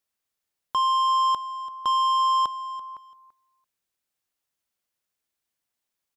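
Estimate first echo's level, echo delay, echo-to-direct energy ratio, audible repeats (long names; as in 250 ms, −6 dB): −16.0 dB, 337 ms, −16.0 dB, 2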